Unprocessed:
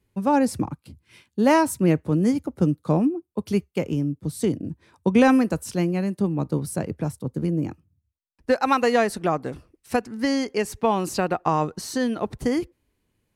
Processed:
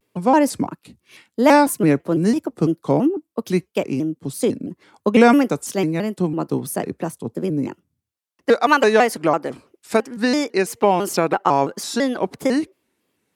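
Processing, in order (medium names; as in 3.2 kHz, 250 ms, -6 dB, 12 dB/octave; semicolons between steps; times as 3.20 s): high-pass 240 Hz 12 dB/octave; vibrato with a chosen wave square 3 Hz, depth 160 cents; trim +5.5 dB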